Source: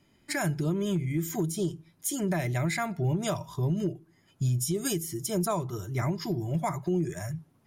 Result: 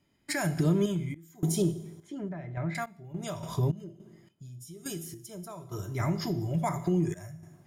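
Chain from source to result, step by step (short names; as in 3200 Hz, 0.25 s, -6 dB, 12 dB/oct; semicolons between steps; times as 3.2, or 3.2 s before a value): 1.62–2.75 LPF 1700 Hz 12 dB/oct; two-slope reverb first 0.76 s, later 2.6 s, from -21 dB, DRR 9.5 dB; in parallel at +2.5 dB: compressor, threshold -37 dBFS, peak gain reduction 13.5 dB; on the sum: random-step tremolo, depth 95%; ending taper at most 530 dB/s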